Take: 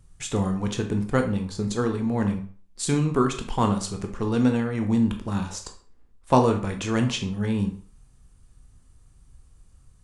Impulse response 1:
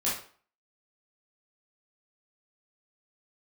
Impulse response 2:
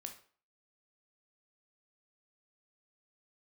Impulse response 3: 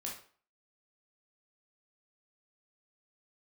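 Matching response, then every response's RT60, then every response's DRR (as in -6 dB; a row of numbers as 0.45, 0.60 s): 2; 0.45, 0.45, 0.45 s; -8.0, 4.5, -2.5 dB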